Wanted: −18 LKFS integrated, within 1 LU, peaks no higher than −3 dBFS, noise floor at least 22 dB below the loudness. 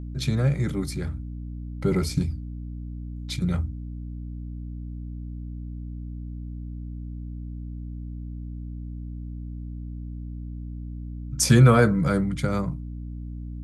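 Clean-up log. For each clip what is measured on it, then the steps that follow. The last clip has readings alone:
mains hum 60 Hz; hum harmonics up to 300 Hz; level of the hum −32 dBFS; integrated loudness −27.5 LKFS; sample peak −4.0 dBFS; target loudness −18.0 LKFS
→ hum removal 60 Hz, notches 5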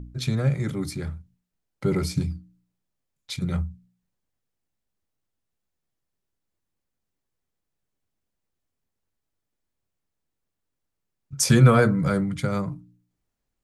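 mains hum none found; integrated loudness −23.5 LKFS; sample peak −5.0 dBFS; target loudness −18.0 LKFS
→ level +5.5 dB
brickwall limiter −3 dBFS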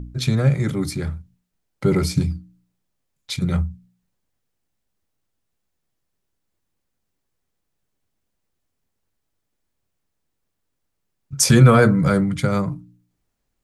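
integrated loudness −18.5 LKFS; sample peak −3.0 dBFS; background noise floor −77 dBFS

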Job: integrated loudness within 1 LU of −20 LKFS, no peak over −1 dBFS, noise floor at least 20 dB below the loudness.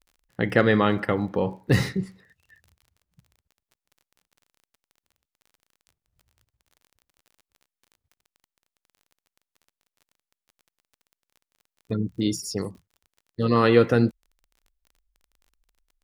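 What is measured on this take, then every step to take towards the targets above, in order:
crackle rate 28 per second; integrated loudness −23.5 LKFS; sample peak −3.5 dBFS; target loudness −20.0 LKFS
→ click removal
level +3.5 dB
brickwall limiter −1 dBFS

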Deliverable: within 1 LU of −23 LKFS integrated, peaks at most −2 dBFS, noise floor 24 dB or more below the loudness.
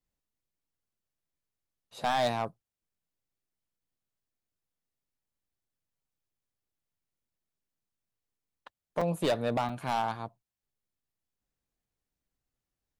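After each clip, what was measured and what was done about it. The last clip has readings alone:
share of clipped samples 0.5%; peaks flattened at −22.5 dBFS; number of dropouts 2; longest dropout 4.6 ms; integrated loudness −31.5 LKFS; sample peak −22.5 dBFS; target loudness −23.0 LKFS
→ clipped peaks rebuilt −22.5 dBFS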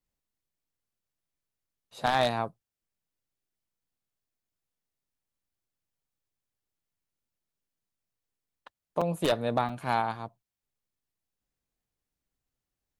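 share of clipped samples 0.0%; number of dropouts 2; longest dropout 4.6 ms
→ repair the gap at 0:09.01/0:09.69, 4.6 ms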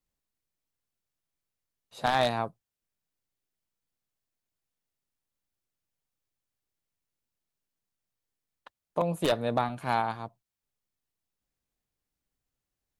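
number of dropouts 0; integrated loudness −29.5 LKFS; sample peak −13.5 dBFS; target loudness −23.0 LKFS
→ level +6.5 dB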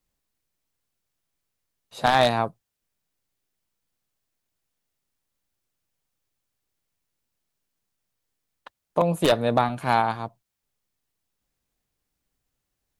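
integrated loudness −23.0 LKFS; sample peak −7.0 dBFS; background noise floor −82 dBFS

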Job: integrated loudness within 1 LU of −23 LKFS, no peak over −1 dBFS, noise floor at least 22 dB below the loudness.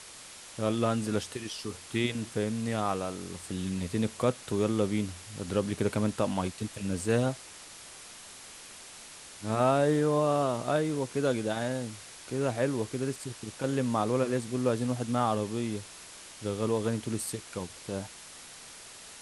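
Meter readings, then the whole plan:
background noise floor −48 dBFS; target noise floor −53 dBFS; integrated loudness −31.0 LKFS; sample peak −13.0 dBFS; target loudness −23.0 LKFS
→ broadband denoise 6 dB, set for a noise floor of −48 dBFS
level +8 dB

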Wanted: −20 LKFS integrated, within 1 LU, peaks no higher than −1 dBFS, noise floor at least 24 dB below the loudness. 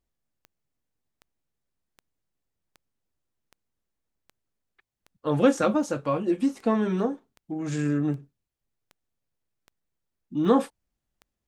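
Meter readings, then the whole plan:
number of clicks 15; integrated loudness −26.0 LKFS; sample peak −7.5 dBFS; target loudness −20.0 LKFS
→ click removal
level +6 dB

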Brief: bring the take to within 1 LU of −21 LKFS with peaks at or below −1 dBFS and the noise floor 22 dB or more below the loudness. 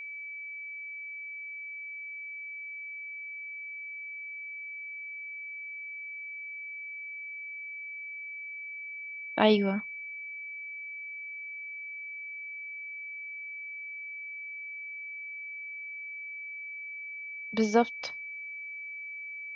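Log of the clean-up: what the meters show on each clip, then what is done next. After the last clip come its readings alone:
interfering tone 2,300 Hz; level of the tone −38 dBFS; integrated loudness −35.5 LKFS; sample peak −8.5 dBFS; target loudness −21.0 LKFS
→ notch filter 2,300 Hz, Q 30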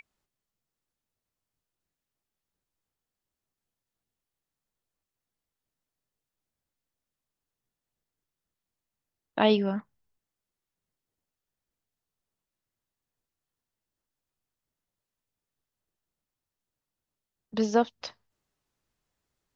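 interfering tone none found; integrated loudness −27.5 LKFS; sample peak −9.0 dBFS; target loudness −21.0 LKFS
→ level +6.5 dB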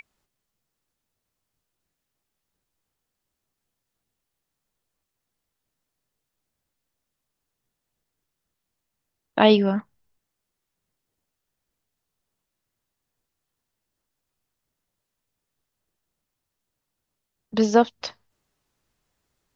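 integrated loudness −21.0 LKFS; sample peak −2.5 dBFS; background noise floor −83 dBFS

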